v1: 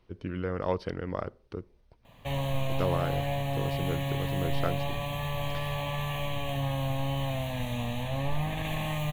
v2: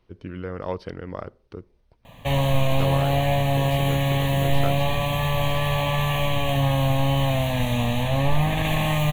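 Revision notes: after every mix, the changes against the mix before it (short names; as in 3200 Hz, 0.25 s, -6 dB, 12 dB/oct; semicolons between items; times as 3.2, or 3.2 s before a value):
background +9.5 dB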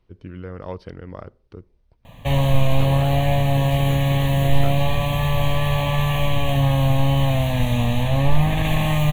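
speech -4.0 dB; master: add low shelf 160 Hz +6.5 dB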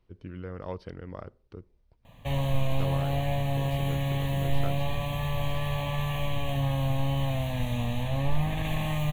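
speech -4.5 dB; background -9.5 dB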